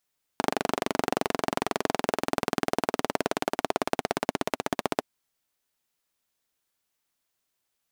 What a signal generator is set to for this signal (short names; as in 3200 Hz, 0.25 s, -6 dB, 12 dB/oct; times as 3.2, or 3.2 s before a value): single-cylinder engine model, changing speed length 4.62 s, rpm 2900, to 1800, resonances 280/410/640 Hz